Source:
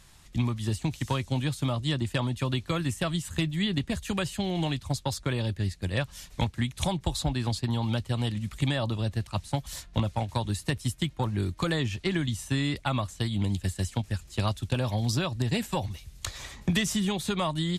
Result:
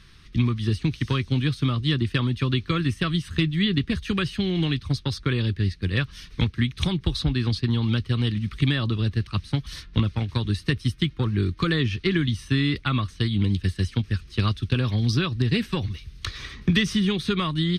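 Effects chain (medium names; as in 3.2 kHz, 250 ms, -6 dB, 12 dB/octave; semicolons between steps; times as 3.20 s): Savitzky-Golay filter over 15 samples; high-order bell 720 Hz -14 dB 1 oct; trim +5.5 dB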